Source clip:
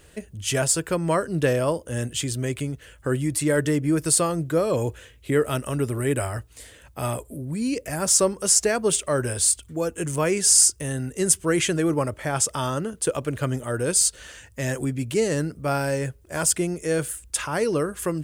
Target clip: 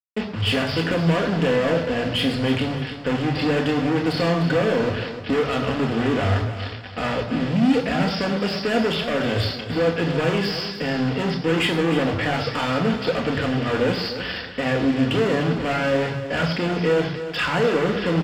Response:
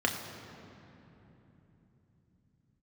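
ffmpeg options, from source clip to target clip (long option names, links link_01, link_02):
-filter_complex "[0:a]acompressor=threshold=-24dB:ratio=3,aresample=11025,acrusher=bits=6:mix=0:aa=0.000001,aresample=44100,asoftclip=type=hard:threshold=-32dB,aecho=1:1:302|604|906:0.282|0.0817|0.0237[link_01];[1:a]atrim=start_sample=2205,atrim=end_sample=6615[link_02];[link_01][link_02]afir=irnorm=-1:irlink=0,volume=4dB"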